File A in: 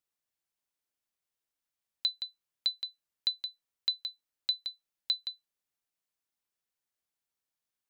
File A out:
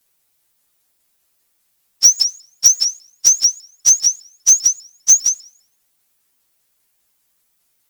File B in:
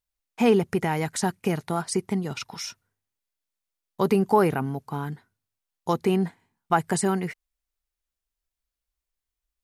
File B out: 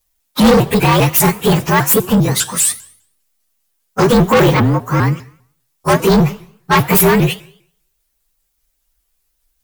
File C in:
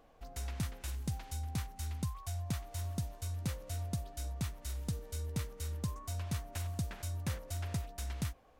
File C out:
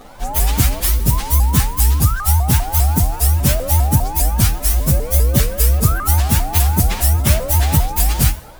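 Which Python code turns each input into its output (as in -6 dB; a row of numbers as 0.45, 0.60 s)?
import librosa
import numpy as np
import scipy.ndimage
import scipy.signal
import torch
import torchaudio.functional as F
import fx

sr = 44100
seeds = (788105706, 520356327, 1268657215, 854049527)

y = fx.partial_stretch(x, sr, pct=115)
y = fx.high_shelf(y, sr, hz=6800.0, db=11.0)
y = 10.0 ** (-27.5 / 20.0) * np.tanh(y / 10.0 ** (-27.5 / 20.0))
y = fx.rev_schroeder(y, sr, rt60_s=0.6, comb_ms=26, drr_db=15.0)
y = fx.vibrato_shape(y, sr, shape='saw_up', rate_hz=5.0, depth_cents=250.0)
y = y * 10.0 ** (-2 / 20.0) / np.max(np.abs(y))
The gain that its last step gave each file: +24.5, +20.5, +27.0 dB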